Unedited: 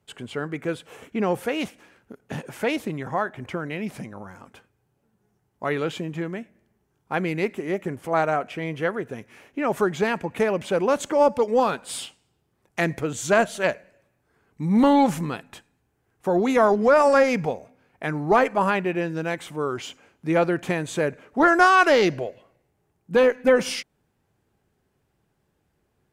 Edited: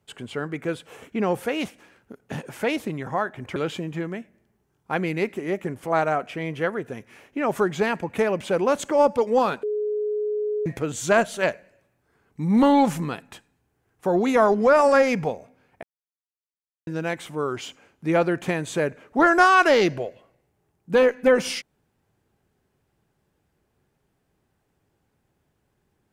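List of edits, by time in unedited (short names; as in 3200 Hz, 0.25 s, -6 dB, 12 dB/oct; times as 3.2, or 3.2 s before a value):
3.56–5.77 cut
11.84–12.87 bleep 421 Hz -22.5 dBFS
18.04–19.08 mute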